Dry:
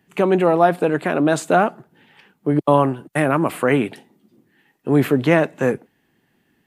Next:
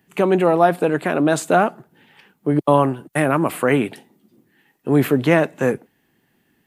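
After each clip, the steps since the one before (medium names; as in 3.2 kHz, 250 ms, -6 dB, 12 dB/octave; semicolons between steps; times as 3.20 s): treble shelf 10 kHz +7 dB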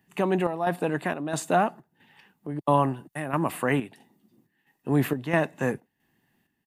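comb 1.1 ms, depth 32%; square tremolo 1.5 Hz, depth 60%, duty 70%; trim -6.5 dB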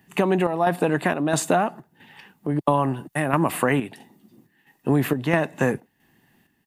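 compression 6:1, threshold -25 dBFS, peak gain reduction 9.5 dB; trim +9 dB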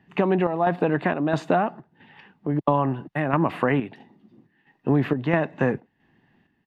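distance through air 260 m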